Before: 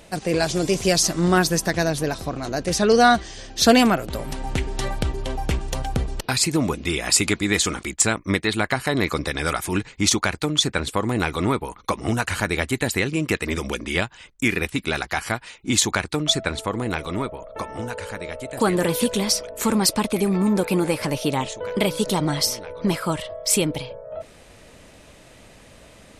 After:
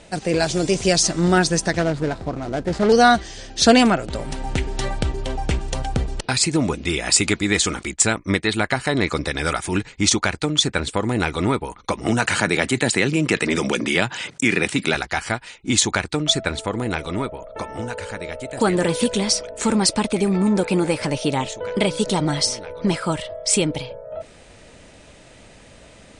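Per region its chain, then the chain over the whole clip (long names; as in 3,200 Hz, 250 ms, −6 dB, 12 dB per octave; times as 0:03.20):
0:01.79–0:02.92: running median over 15 samples + highs frequency-modulated by the lows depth 0.24 ms
0:12.06–0:14.95: high-pass filter 120 Hz 24 dB per octave + envelope flattener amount 50%
whole clip: Butterworth low-pass 9,800 Hz 96 dB per octave; notch filter 1,100 Hz, Q 13; level +1.5 dB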